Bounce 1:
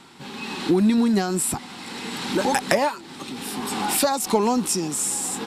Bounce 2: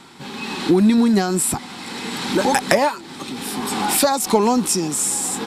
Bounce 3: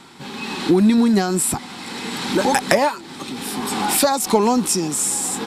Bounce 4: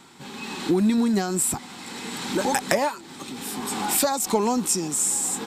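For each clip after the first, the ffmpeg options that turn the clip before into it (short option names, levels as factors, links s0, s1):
-af "bandreject=f=2800:w=24,volume=1.58"
-af anull
-af "aexciter=amount=2.1:drive=1.2:freq=6500,volume=0.501"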